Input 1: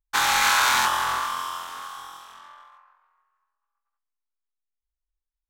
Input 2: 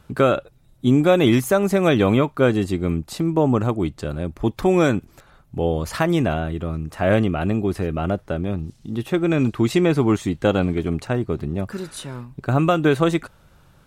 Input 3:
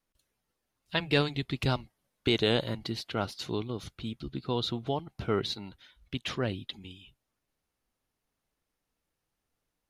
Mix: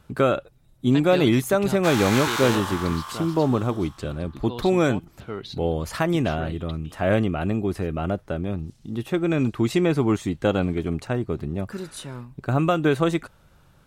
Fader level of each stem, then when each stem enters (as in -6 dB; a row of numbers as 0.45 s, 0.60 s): -7.5 dB, -3.0 dB, -4.5 dB; 1.70 s, 0.00 s, 0.00 s